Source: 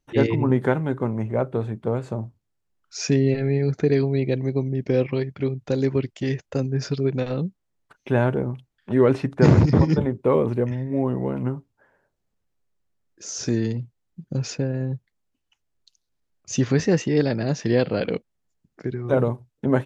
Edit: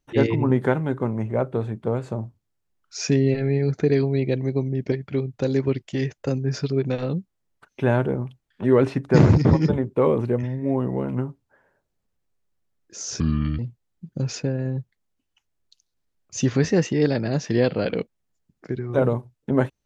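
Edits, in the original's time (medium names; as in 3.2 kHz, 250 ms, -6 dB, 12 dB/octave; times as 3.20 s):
4.92–5.20 s: delete
13.48–13.74 s: speed 67%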